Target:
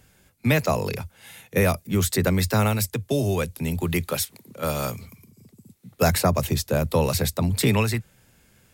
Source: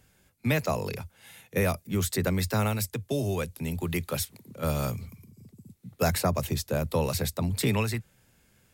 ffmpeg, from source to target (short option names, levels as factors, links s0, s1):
-filter_complex "[0:a]asettb=1/sr,asplit=3[s0][s1][s2];[s0]atrim=end=4.134[s3];[s1]atrim=start=4.13:end=5.98,asetpts=PTS-STARTPTS,afade=t=in:d=0.004:c=qsin,afade=t=out:st=1.846:d=0.004:c=qsin,lowshelf=f=220:g=-9.5[s4];[s2]atrim=start=5.976[s5];[s3][s4]acrossfade=d=0.004:c1=hsin:c2=qsin[s6];[s6][s5]acrossfade=d=0.004:c1=qsin:c2=hsin,volume=1.88"